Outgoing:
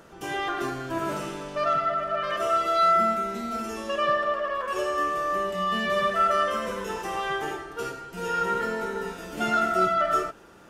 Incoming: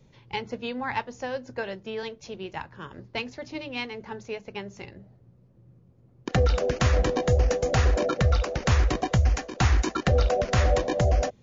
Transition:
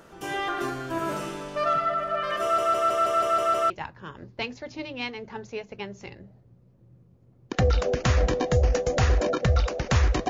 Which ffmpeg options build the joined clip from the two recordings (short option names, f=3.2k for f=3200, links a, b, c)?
-filter_complex "[0:a]apad=whole_dur=10.29,atrim=end=10.29,asplit=8[a][b][c][d][e][f][g][h];[a]atrim=end=2.582[i];[b]atrim=start=2.418:end=2.582[j];[c]atrim=start=2.418:end=2.582[k];[d]atrim=start=2.418:end=2.582[l];[e]atrim=start=2.418:end=2.582[m];[f]atrim=start=2.418:end=2.582[n];[g]atrim=start=2.418:end=2.582[o];[h]atrim=start=2.418:end=2.582[p];[1:a]atrim=start=2.458:end=9.05[q];[i][j]acrossfade=d=0.004:c1=hsin:c2=hsin[r];[r][k]acrossfade=d=0.004:c1=hsin:c2=hsin[s];[s][l]acrossfade=d=0.004:c1=hsin:c2=hsin[t];[t][m]acrossfade=d=0.004:c1=hsin:c2=hsin[u];[u][n]acrossfade=d=0.004:c1=hsin:c2=hsin[v];[v][o]acrossfade=d=0.004:c1=hsin:c2=hsin[w];[w][p]acrossfade=d=0.004:c1=hsin:c2=hsin[x];[x][q]acrossfade=d=0.004:c1=hsin:c2=hsin"